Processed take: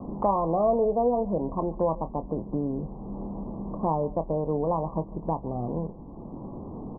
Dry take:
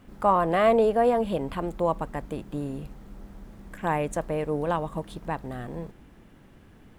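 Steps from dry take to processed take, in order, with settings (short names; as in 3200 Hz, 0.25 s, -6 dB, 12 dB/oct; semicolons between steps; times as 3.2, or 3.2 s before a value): steep low-pass 1100 Hz 96 dB/oct; doubler 25 ms -11 dB; on a send: echo 0.143 s -22 dB; on the sum: three-band squash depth 70%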